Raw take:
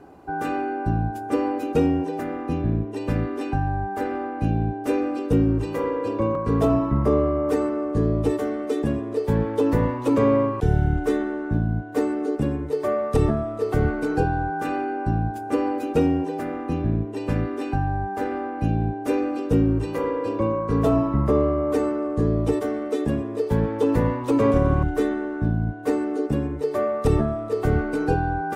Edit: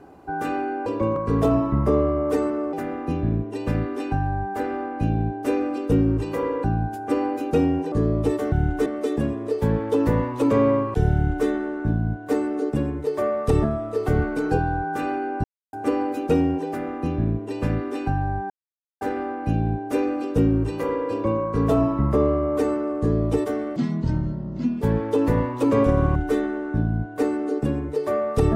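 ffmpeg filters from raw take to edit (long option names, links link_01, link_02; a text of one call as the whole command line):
ffmpeg -i in.wav -filter_complex "[0:a]asplit=12[link_01][link_02][link_03][link_04][link_05][link_06][link_07][link_08][link_09][link_10][link_11][link_12];[link_01]atrim=end=0.862[link_13];[link_02]atrim=start=6.048:end=7.922[link_14];[link_03]atrim=start=2.138:end=6.052[link_15];[link_04]atrim=start=0.858:end=2.142[link_16];[link_05]atrim=start=7.918:end=8.522[link_17];[link_06]atrim=start=10.788:end=11.132[link_18];[link_07]atrim=start=8.518:end=15.1,asetpts=PTS-STARTPTS,afade=type=out:start_time=6.578:duration=0.004:curve=hsin[link_19];[link_08]atrim=start=15.1:end=15.39,asetpts=PTS-STARTPTS,volume=0[link_20];[link_09]atrim=start=15.39:end=18.16,asetpts=PTS-STARTPTS,afade=type=in:duration=0.004:curve=hsin,afade=type=out:start_time=2.766:duration=0.004:curve=hsin,apad=pad_dur=0.51[link_21];[link_10]atrim=start=18.16:end=22.914,asetpts=PTS-STARTPTS,afade=type=in:duration=0.004:curve=hsin[link_22];[link_11]atrim=start=22.91:end=23.49,asetpts=PTS-STARTPTS,asetrate=24255,aresample=44100,atrim=end_sample=46505,asetpts=PTS-STARTPTS[link_23];[link_12]atrim=start=23.486[link_24];[link_13][link_14]acrossfade=duration=0.004:curve1=hsin:curve2=hsin[link_25];[link_25][link_15]acrossfade=duration=0.004:curve1=hsin:curve2=hsin[link_26];[link_26][link_16]acrossfade=duration=0.004:curve1=hsin:curve2=hsin[link_27];[link_27][link_17]acrossfade=duration=0.004:curve1=hsin:curve2=hsin[link_28];[link_28][link_18]acrossfade=duration=0.004:curve1=hsin:curve2=hsin[link_29];[link_19][link_20][link_21][link_22]concat=n=4:v=0:a=1[link_30];[link_29][link_30]acrossfade=duration=0.004:curve1=hsin:curve2=hsin[link_31];[link_31][link_23]acrossfade=duration=0.004:curve1=hsin:curve2=hsin[link_32];[link_32][link_24]acrossfade=duration=0.004:curve1=hsin:curve2=hsin" out.wav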